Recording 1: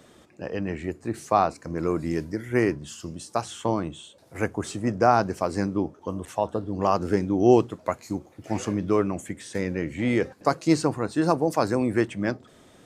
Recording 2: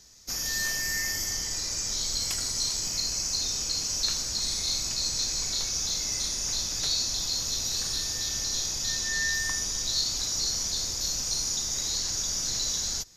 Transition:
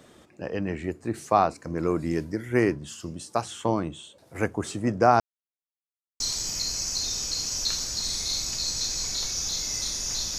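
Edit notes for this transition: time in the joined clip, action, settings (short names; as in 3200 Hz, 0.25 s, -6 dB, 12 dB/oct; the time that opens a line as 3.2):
recording 1
5.2–6.2 mute
6.2 switch to recording 2 from 2.58 s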